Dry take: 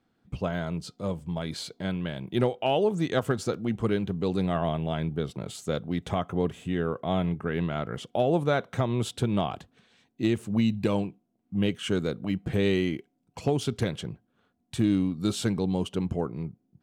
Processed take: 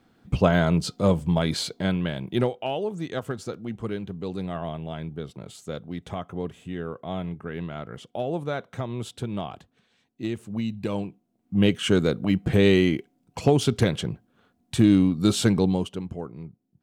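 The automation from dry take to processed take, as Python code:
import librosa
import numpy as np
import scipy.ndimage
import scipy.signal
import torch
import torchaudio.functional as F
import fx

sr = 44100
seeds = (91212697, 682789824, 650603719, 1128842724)

y = fx.gain(x, sr, db=fx.line((1.2, 10.5), (2.32, 3.0), (2.76, -4.5), (10.75, -4.5), (11.66, 6.5), (15.64, 6.5), (16.04, -5.0)))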